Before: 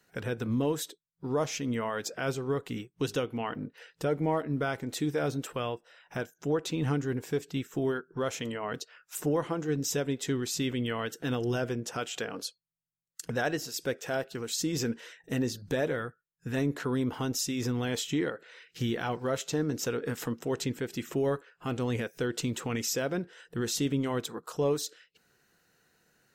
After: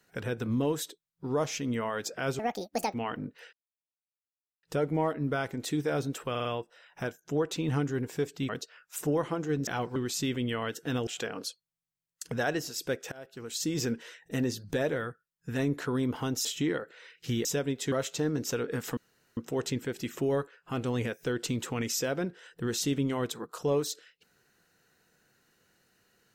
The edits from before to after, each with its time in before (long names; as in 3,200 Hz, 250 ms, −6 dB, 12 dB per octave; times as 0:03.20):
0:02.39–0:03.33: play speed 171%
0:03.92: splice in silence 1.10 s
0:05.59: stutter 0.05 s, 4 plays
0:07.63–0:08.68: remove
0:09.86–0:10.33: swap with 0:18.97–0:19.26
0:11.44–0:12.05: remove
0:14.10–0:14.68: fade in, from −24 dB
0:17.43–0:17.97: remove
0:20.31: splice in room tone 0.40 s